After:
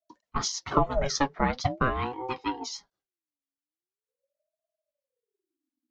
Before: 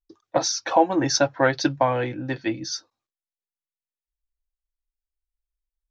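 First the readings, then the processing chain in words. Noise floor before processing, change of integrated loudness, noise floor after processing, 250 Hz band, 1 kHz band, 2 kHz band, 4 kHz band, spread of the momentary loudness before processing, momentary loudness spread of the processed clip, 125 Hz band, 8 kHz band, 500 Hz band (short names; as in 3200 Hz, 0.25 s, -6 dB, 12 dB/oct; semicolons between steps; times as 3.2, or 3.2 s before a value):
under -85 dBFS, -6.0 dB, under -85 dBFS, -7.0 dB, -4.5 dB, -6.5 dB, -6.5 dB, 9 LU, 10 LU, -2.5 dB, n/a, -8.5 dB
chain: rotary speaker horn 6.3 Hz; ring modulator with a swept carrier 460 Hz, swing 40%, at 0.43 Hz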